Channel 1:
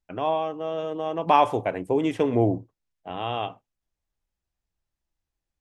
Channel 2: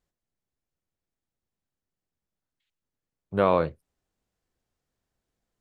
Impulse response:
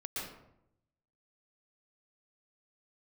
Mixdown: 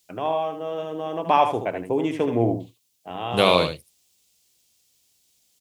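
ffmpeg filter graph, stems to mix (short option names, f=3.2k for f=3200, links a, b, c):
-filter_complex "[0:a]volume=-0.5dB,asplit=2[a][b];[b]volume=-8dB[c];[1:a]aexciter=amount=7.8:drive=6.7:freq=2.4k,volume=2.5dB,asplit=2[d][e];[e]volume=-8dB[f];[c][f]amix=inputs=2:normalize=0,aecho=0:1:77:1[g];[a][d][g]amix=inputs=3:normalize=0,highpass=81"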